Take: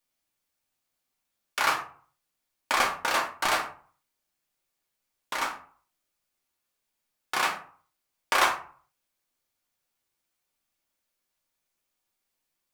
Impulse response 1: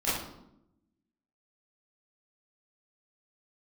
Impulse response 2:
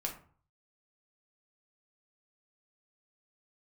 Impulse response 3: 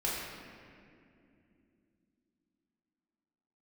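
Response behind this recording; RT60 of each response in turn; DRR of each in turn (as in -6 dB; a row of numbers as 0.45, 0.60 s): 2; 0.80, 0.45, 2.6 s; -11.5, -0.5, -7.0 dB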